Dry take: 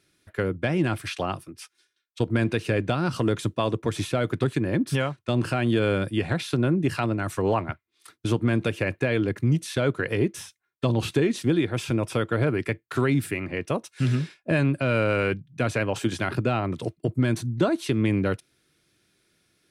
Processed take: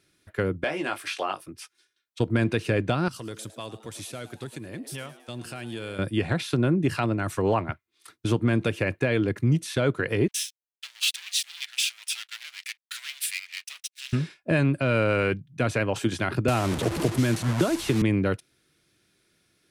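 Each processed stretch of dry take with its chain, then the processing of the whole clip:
0.64–1.46 s: high-pass 460 Hz + doubling 20 ms -6 dB
3.08–5.99 s: pre-emphasis filter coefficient 0.8 + frequency-shifting echo 108 ms, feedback 53%, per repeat +110 Hz, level -15.5 dB
10.28–14.13 s: waveshaping leveller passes 5 + ladder high-pass 2.2 kHz, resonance 25% + upward expansion, over -46 dBFS
16.48–18.02 s: one-bit delta coder 64 kbps, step -28 dBFS + three bands compressed up and down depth 100%
whole clip: none

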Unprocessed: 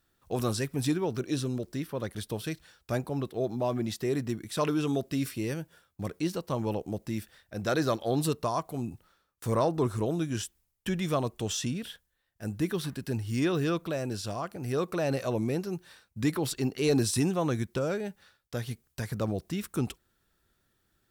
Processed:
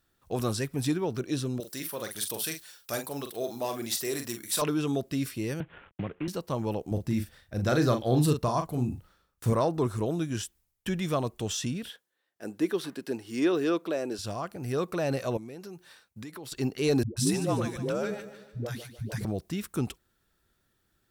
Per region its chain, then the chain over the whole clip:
1.60–4.62 s: RIAA curve recording + hard clipper -22 dBFS + doubling 43 ms -7 dB
5.60–6.28 s: CVSD coder 16 kbps + three bands compressed up and down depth 100%
6.91–9.53 s: bass shelf 170 Hz +10.5 dB + doubling 40 ms -7 dB
11.90–14.19 s: resonant high-pass 330 Hz, resonance Q 1.5 + treble shelf 8.3 kHz -5 dB
15.37–16.52 s: bass shelf 140 Hz -11 dB + compression 10:1, threshold -38 dBFS
17.03–19.25 s: phase dispersion highs, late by 137 ms, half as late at 330 Hz + feedback delay 148 ms, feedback 44%, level -12 dB
whole clip: none

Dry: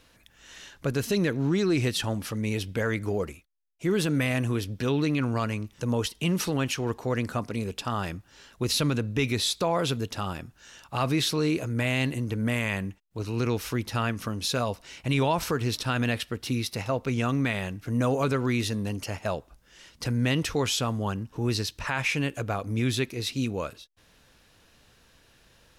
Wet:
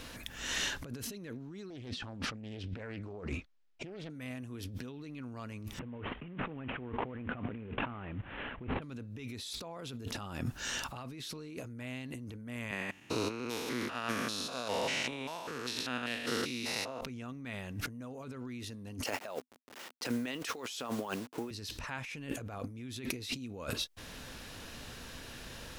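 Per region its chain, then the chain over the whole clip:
1.70–4.10 s: distance through air 140 m + loudspeaker Doppler distortion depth 0.46 ms
5.79–8.82 s: CVSD coder 16 kbps + distance through air 160 m
12.71–17.01 s: spectrogram pixelated in time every 200 ms + frequency weighting A
19.04–21.51 s: send-on-delta sampling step -44 dBFS + high-pass 370 Hz + upward expansion, over -45 dBFS
whole clip: peak limiter -25.5 dBFS; compressor with a negative ratio -45 dBFS, ratio -1; peaking EQ 250 Hz +6 dB 0.21 oct; trim +3.5 dB

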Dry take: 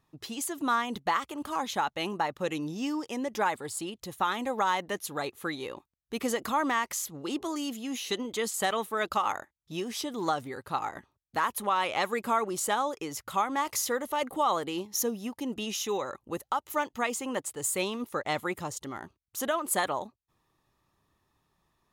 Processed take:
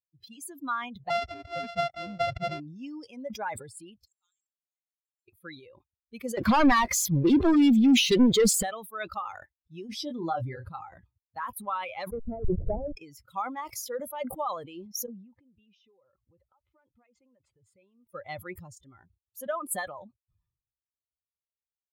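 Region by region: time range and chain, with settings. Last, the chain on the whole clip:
1.10–2.60 s: sorted samples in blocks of 64 samples + Bessel low-pass 5.4 kHz + waveshaping leveller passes 1
4.05–5.28 s: band-pass filter 7.4 kHz, Q 12 + slow attack 244 ms
6.37–8.63 s: treble shelf 4.6 kHz -8.5 dB + waveshaping leveller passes 5 + loudspeaker Doppler distortion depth 0.12 ms
9.89–10.69 s: treble shelf 6.3 kHz -6 dB + doubling 24 ms -6 dB + level flattener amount 50%
12.11–12.95 s: send-on-delta sampling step -28 dBFS + inverse Chebyshev low-pass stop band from 2.5 kHz, stop band 70 dB + waveshaping leveller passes 2
15.06–18.09 s: distance through air 260 m + compression 8:1, threshold -41 dBFS
whole clip: expander on every frequency bin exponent 2; bass shelf 230 Hz +11.5 dB; decay stretcher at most 79 dB/s

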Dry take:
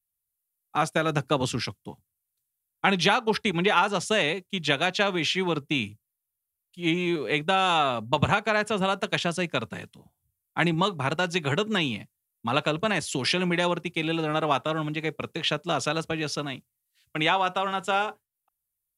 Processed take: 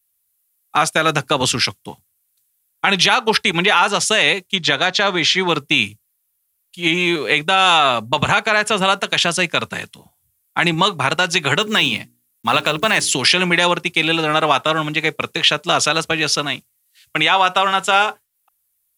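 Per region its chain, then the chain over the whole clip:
4.55–5.49 s: low-pass 6.2 kHz + peaking EQ 2.7 kHz -8 dB 0.43 oct
11.59–13.13 s: block-companded coder 7-bit + hum notches 60/120/180/240/300/360/420 Hz
whole clip: tilt shelf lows -5.5 dB, about 760 Hz; loudness maximiser +11.5 dB; trim -1.5 dB

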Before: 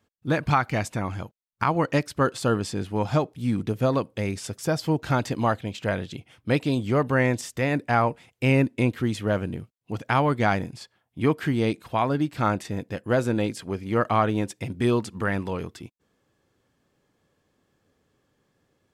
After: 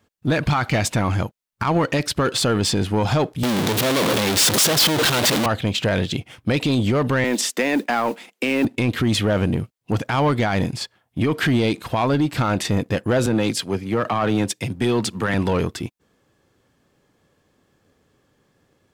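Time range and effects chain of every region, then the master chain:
3.43–5.46 s: one-bit comparator + high-pass 150 Hz
7.24–8.65 s: Chebyshev high-pass 200 Hz, order 5 + modulation noise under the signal 30 dB
13.26–15.34 s: high-pass 99 Hz + three bands expanded up and down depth 70%
whole clip: dynamic bell 3.6 kHz, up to +6 dB, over -45 dBFS, Q 1.4; peak limiter -20.5 dBFS; waveshaping leveller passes 1; trim +8.5 dB

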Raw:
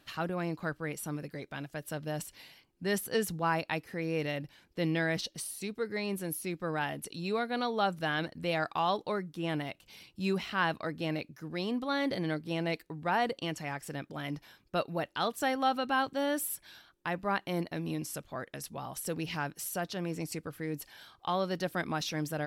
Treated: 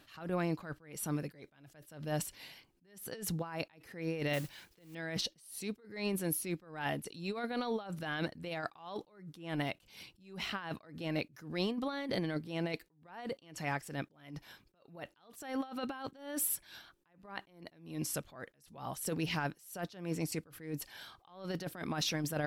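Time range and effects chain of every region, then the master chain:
4.33–4.95 s: modulation noise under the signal 15 dB + band-stop 260 Hz, Q 5.7 + tape noise reduction on one side only encoder only
whole clip: compressor with a negative ratio -34 dBFS, ratio -0.5; attacks held to a fixed rise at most 110 dB/s

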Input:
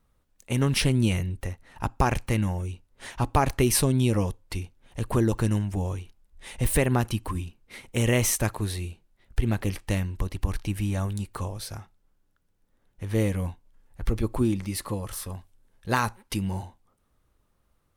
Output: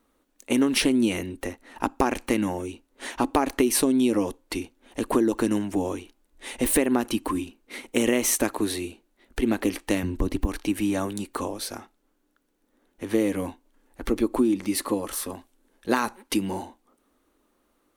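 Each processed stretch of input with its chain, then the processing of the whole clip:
10.03–10.47 s: de-esser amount 95% + bass shelf 260 Hz +12 dB
whole clip: resonant low shelf 190 Hz -12.5 dB, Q 3; band-stop 5.1 kHz, Q 21; compression 5:1, threshold -23 dBFS; trim +5 dB

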